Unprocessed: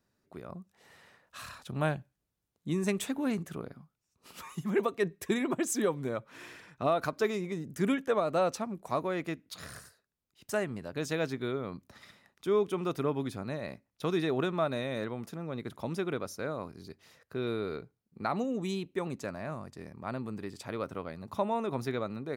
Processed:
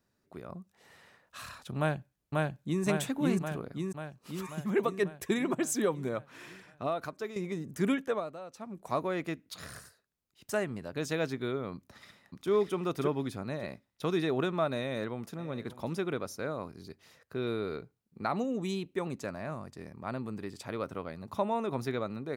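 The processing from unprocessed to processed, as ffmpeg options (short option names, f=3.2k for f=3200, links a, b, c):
-filter_complex "[0:a]asplit=2[a][b];[b]afade=t=in:st=1.78:d=0.01,afade=t=out:st=2.84:d=0.01,aecho=0:1:540|1080|1620|2160|2700|3240|3780|4320|4860|5400|5940:0.944061|0.61364|0.398866|0.259263|0.168521|0.109538|0.0712|0.04628|0.030082|0.0195533|0.0127096[c];[a][c]amix=inputs=2:normalize=0,asplit=2[d][e];[e]afade=t=in:st=11.74:d=0.01,afade=t=out:st=12.49:d=0.01,aecho=0:1:580|1160|1740:0.891251|0.17825|0.03565[f];[d][f]amix=inputs=2:normalize=0,asplit=2[g][h];[h]afade=t=in:st=14.79:d=0.01,afade=t=out:st=15.39:d=0.01,aecho=0:1:590|1180:0.158489|0.0237734[i];[g][i]amix=inputs=2:normalize=0,asplit=4[j][k][l][m];[j]atrim=end=7.36,asetpts=PTS-STARTPTS,afade=t=out:st=6.26:d=1.1:silence=0.281838[n];[k]atrim=start=7.36:end=8.37,asetpts=PTS-STARTPTS,afade=t=in:d=0.004:c=hsin:silence=0.281838,afade=t=out:st=0.63:d=0.38:silence=0.141254[o];[l]atrim=start=8.37:end=8.52,asetpts=PTS-STARTPTS,volume=-17dB[p];[m]atrim=start=8.52,asetpts=PTS-STARTPTS,afade=t=in:d=0.38:silence=0.141254[q];[n][o][p][q]concat=n=4:v=0:a=1"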